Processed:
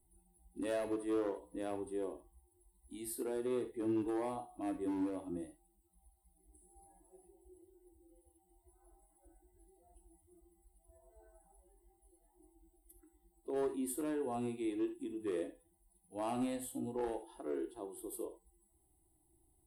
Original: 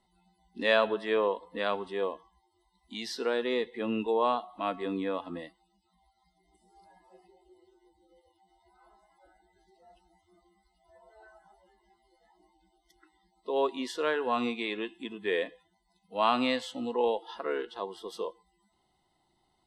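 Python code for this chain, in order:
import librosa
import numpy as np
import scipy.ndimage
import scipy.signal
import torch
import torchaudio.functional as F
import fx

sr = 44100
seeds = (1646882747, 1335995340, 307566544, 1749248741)

y = fx.curve_eq(x, sr, hz=(100.0, 220.0, 310.0, 460.0, 780.0, 1100.0, 6000.0, 9400.0), db=(0, -20, -2, -19, -17, -27, -29, 7))
y = np.clip(y, -10.0 ** (-39.0 / 20.0), 10.0 ** (-39.0 / 20.0))
y = fx.rev_gated(y, sr, seeds[0], gate_ms=100, shape='flat', drr_db=8.0)
y = F.gain(torch.from_numpy(y), 7.0).numpy()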